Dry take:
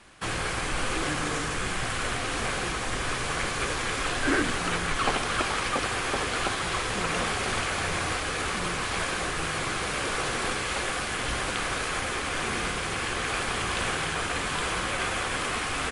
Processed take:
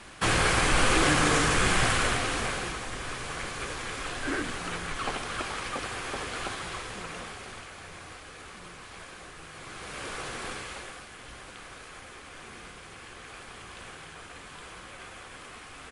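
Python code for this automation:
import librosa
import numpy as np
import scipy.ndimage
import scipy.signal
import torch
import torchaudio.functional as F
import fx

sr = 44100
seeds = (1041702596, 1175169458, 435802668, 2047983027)

y = fx.gain(x, sr, db=fx.line((1.84, 6.0), (2.9, -6.5), (6.55, -6.5), (7.72, -16.0), (9.5, -16.0), (10.05, -8.0), (10.57, -8.0), (11.1, -16.0)))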